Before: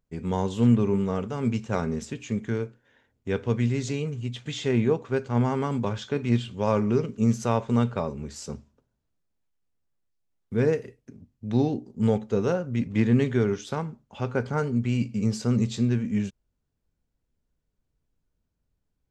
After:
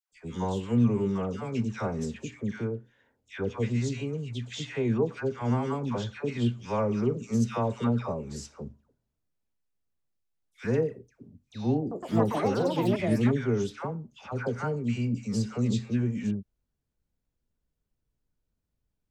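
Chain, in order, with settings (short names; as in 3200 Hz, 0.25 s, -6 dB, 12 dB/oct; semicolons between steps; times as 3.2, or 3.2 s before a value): dispersion lows, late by 0.128 s, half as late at 1200 Hz; 11.8–13.9 echoes that change speed 0.113 s, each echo +7 st, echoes 2; gain -3.5 dB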